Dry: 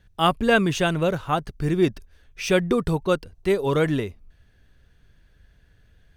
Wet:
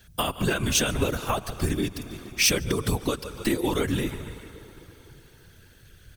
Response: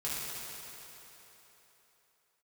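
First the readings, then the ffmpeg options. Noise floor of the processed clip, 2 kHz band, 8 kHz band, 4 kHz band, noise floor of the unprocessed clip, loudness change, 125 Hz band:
-54 dBFS, -3.5 dB, +11.0 dB, +3.0 dB, -59 dBFS, -3.0 dB, -2.5 dB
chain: -filter_complex "[0:a]equalizer=f=75:w=0.65:g=-5,aecho=1:1:146|292|438|584:0.0891|0.0499|0.0279|0.0157,asplit=2[a][b];[1:a]atrim=start_sample=2205[c];[b][c]afir=irnorm=-1:irlink=0,volume=-25dB[d];[a][d]amix=inputs=2:normalize=0,alimiter=limit=-15dB:level=0:latency=1:release=334,afreqshift=-69,acompressor=threshold=-28dB:ratio=6,lowshelf=f=480:g=4.5,afftfilt=real='hypot(re,im)*cos(2*PI*random(0))':imag='hypot(re,im)*sin(2*PI*random(1))':win_size=512:overlap=0.75,crystalizer=i=5:c=0,volume=8dB"

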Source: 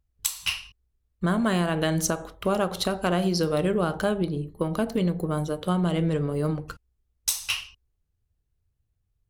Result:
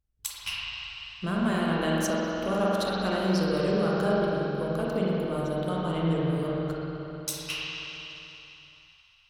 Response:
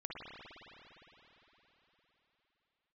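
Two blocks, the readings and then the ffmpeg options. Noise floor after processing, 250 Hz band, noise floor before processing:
-60 dBFS, -1.5 dB, -76 dBFS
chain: -filter_complex "[1:a]atrim=start_sample=2205,asetrate=52920,aresample=44100[a];[0:a][a]afir=irnorm=-1:irlink=0"

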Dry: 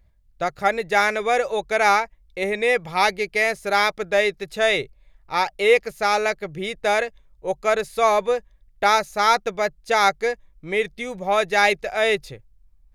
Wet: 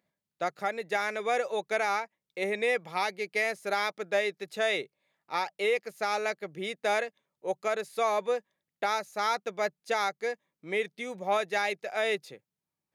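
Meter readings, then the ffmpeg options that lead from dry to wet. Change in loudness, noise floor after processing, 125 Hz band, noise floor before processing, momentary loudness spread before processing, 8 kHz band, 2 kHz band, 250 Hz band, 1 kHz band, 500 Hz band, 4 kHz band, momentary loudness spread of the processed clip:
-9.5 dB, under -85 dBFS, -11.0 dB, -58 dBFS, 10 LU, -10.0 dB, -9.5 dB, -9.0 dB, -10.5 dB, -8.5 dB, -10.0 dB, 7 LU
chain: -af "highpass=f=180:w=0.5412,highpass=f=180:w=1.3066,alimiter=limit=-11dB:level=0:latency=1:release=354,volume=-6.5dB"

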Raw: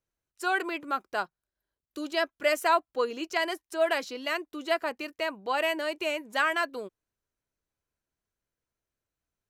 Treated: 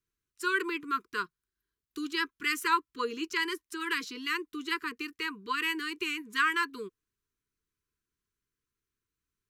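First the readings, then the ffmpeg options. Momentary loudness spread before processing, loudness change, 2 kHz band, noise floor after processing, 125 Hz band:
8 LU, -2.5 dB, 0.0 dB, under -85 dBFS, n/a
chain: -af "asuperstop=centerf=680:order=20:qfactor=1.3"

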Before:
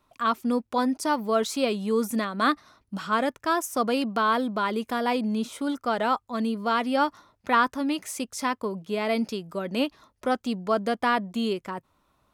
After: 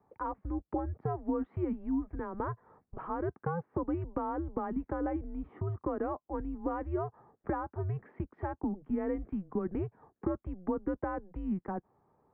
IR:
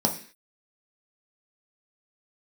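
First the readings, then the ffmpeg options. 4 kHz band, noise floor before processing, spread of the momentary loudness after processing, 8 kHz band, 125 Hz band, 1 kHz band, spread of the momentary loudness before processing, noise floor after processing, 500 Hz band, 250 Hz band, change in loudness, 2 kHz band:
under -40 dB, -73 dBFS, 5 LU, under -40 dB, +3.5 dB, -13.5 dB, 7 LU, -83 dBFS, -9.5 dB, -7.5 dB, -10.0 dB, -19.5 dB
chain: -af "acompressor=threshold=-31dB:ratio=10,highpass=f=340:t=q:w=0.5412,highpass=f=340:t=q:w=1.307,lowpass=f=2k:t=q:w=0.5176,lowpass=f=2k:t=q:w=0.7071,lowpass=f=2k:t=q:w=1.932,afreqshift=-180,tiltshelf=f=650:g=7.5"

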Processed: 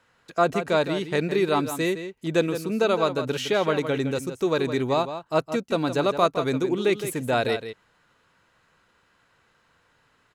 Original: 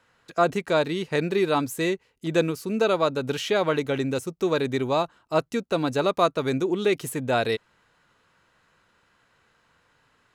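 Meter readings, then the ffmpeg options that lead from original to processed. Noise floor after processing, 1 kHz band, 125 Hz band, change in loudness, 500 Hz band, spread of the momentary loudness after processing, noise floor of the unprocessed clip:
-65 dBFS, +0.5 dB, +0.5 dB, +0.5 dB, +0.5 dB, 5 LU, -66 dBFS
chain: -filter_complex "[0:a]asplit=2[a][b];[b]adelay=163.3,volume=-10dB,highshelf=f=4k:g=-3.67[c];[a][c]amix=inputs=2:normalize=0"

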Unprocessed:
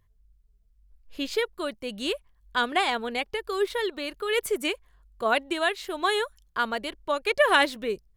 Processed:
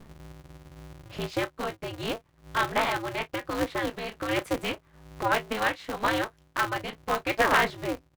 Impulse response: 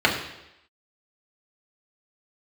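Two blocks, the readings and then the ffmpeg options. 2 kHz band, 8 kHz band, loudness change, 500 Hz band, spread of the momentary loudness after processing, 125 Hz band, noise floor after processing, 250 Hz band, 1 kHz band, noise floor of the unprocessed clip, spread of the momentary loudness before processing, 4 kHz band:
-1.5 dB, -1.0 dB, -1.5 dB, -3.5 dB, 14 LU, n/a, -64 dBFS, +0.5 dB, 0.0 dB, -64 dBFS, 10 LU, -5.0 dB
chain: -filter_complex "[0:a]asplit=2[a][b];[b]aecho=0:1:18|33:0.178|0.15[c];[a][c]amix=inputs=2:normalize=0,asoftclip=type=tanh:threshold=-11dB,highpass=f=45:p=1,aemphasis=mode=reproduction:type=75kf,asplit=2[d][e];[e]adelay=19,volume=-11dB[f];[d][f]amix=inputs=2:normalize=0,acompressor=mode=upward:threshold=-29dB:ratio=2.5,bandreject=f=60:t=h:w=6,bandreject=f=120:t=h:w=6,bandreject=f=180:t=h:w=6,adynamicequalizer=threshold=0.0141:dfrequency=1500:dqfactor=0.91:tfrequency=1500:tqfactor=0.91:attack=5:release=100:ratio=0.375:range=2:mode=boostabove:tftype=bell,aeval=exprs='val(0)*sgn(sin(2*PI*110*n/s))':c=same,volume=-2dB"

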